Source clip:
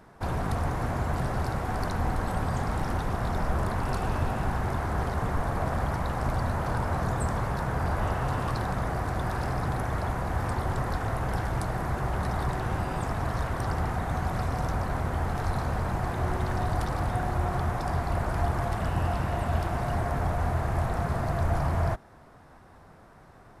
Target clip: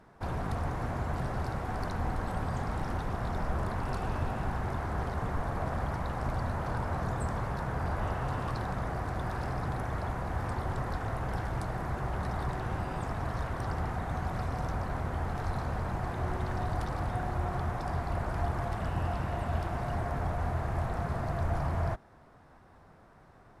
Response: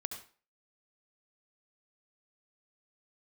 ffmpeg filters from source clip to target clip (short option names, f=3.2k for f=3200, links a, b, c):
-af "highshelf=f=7.6k:g=-7,volume=-4.5dB"